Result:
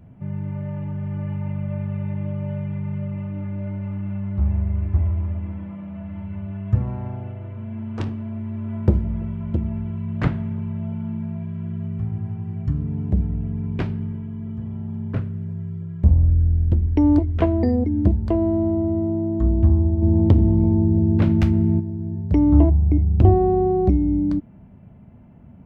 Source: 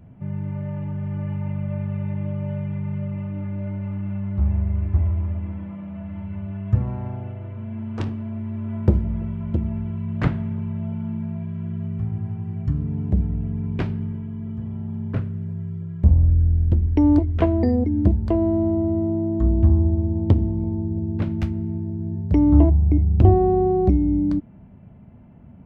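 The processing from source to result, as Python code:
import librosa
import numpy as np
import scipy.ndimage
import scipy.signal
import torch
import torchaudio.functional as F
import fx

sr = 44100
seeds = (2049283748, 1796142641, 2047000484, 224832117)

y = fx.env_flatten(x, sr, amount_pct=50, at=(20.01, 21.79), fade=0.02)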